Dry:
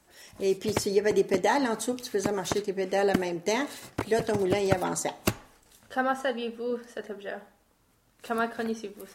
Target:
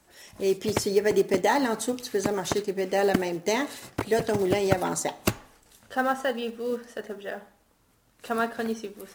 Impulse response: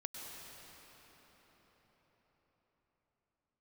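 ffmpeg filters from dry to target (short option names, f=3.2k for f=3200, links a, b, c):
-af "acrusher=bits=6:mode=log:mix=0:aa=0.000001,volume=1.5dB"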